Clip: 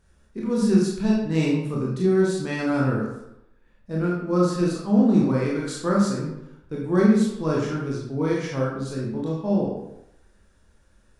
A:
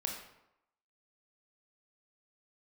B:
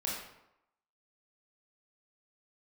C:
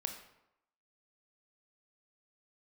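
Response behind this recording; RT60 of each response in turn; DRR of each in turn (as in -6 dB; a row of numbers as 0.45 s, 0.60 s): B; 0.85 s, 0.85 s, 0.85 s; 0.5 dB, -4.5 dB, 5.0 dB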